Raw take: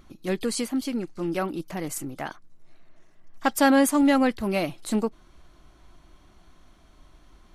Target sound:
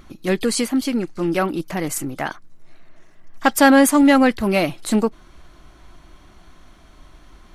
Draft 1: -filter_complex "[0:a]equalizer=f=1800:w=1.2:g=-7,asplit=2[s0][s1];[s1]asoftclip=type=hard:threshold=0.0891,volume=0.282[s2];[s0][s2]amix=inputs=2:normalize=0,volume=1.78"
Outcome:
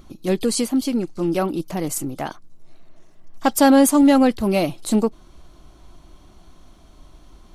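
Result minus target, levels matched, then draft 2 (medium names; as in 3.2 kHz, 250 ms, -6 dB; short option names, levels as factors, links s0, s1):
2 kHz band -8.0 dB
-filter_complex "[0:a]equalizer=f=1800:w=1.2:g=2.5,asplit=2[s0][s1];[s1]asoftclip=type=hard:threshold=0.0891,volume=0.282[s2];[s0][s2]amix=inputs=2:normalize=0,volume=1.78"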